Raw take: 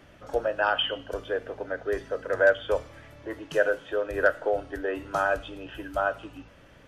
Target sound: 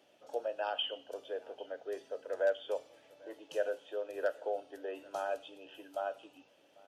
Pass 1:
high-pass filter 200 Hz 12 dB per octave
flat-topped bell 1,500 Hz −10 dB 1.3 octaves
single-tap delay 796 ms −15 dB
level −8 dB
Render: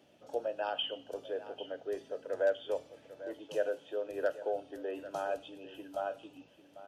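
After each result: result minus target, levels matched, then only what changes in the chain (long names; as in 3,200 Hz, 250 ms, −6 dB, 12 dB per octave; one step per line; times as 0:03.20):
echo-to-direct +9.5 dB; 250 Hz band +4.5 dB
change: single-tap delay 796 ms −24.5 dB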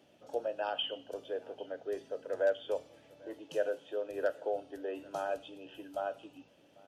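250 Hz band +4.5 dB
change: high-pass filter 420 Hz 12 dB per octave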